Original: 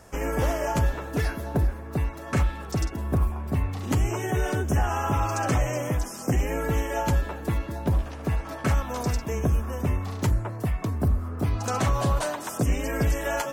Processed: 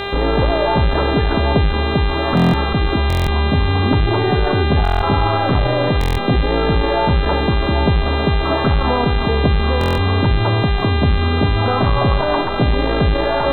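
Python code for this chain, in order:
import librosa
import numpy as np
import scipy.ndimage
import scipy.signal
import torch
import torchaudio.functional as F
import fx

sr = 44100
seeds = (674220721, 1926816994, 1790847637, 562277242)

p1 = fx.tracing_dist(x, sr, depth_ms=0.21)
p2 = scipy.signal.sosfilt(scipy.signal.butter(4, 1300.0, 'lowpass', fs=sr, output='sos'), p1)
p3 = fx.over_compress(p2, sr, threshold_db=-34.0, ratio=-1.0)
p4 = p2 + (p3 * librosa.db_to_amplitude(0.5))
p5 = fx.dmg_buzz(p4, sr, base_hz=400.0, harmonics=10, level_db=-33.0, tilt_db=-3, odd_only=False)
p6 = np.sign(p5) * np.maximum(np.abs(p5) - 10.0 ** (-59.0 / 20.0), 0.0)
p7 = p6 + fx.echo_single(p6, sr, ms=390, db=-14.0, dry=0)
p8 = fx.buffer_glitch(p7, sr, at_s=(2.35, 3.08, 4.83, 5.99, 9.79), block=1024, repeats=7)
p9 = fx.transformer_sat(p8, sr, knee_hz=120.0)
y = p9 * librosa.db_to_amplitude(8.5)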